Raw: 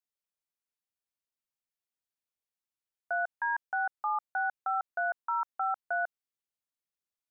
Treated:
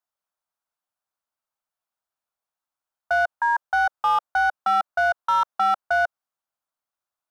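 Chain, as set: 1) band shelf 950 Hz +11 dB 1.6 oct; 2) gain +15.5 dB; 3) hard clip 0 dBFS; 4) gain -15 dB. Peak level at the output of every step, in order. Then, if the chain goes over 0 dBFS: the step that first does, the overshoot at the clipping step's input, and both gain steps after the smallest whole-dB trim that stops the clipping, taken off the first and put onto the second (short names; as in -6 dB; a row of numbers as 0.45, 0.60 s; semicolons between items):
-12.5, +3.0, 0.0, -15.0 dBFS; step 2, 3.0 dB; step 2 +12.5 dB, step 4 -12 dB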